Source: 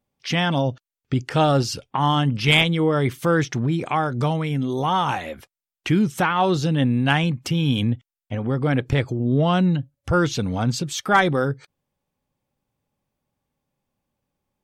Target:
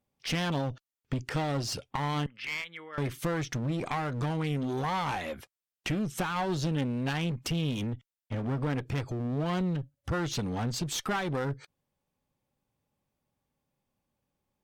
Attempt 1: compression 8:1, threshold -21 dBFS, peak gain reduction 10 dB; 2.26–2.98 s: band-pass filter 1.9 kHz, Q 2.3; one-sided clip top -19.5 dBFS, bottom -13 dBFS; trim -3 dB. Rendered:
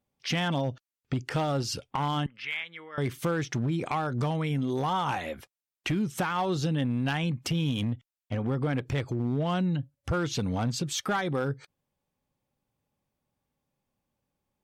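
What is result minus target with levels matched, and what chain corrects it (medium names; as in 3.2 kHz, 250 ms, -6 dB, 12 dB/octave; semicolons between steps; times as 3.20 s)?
one-sided clip: distortion -11 dB
compression 8:1, threshold -21 dBFS, peak gain reduction 10 dB; 2.26–2.98 s: band-pass filter 1.9 kHz, Q 2.3; one-sided clip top -29.5 dBFS, bottom -13 dBFS; trim -3 dB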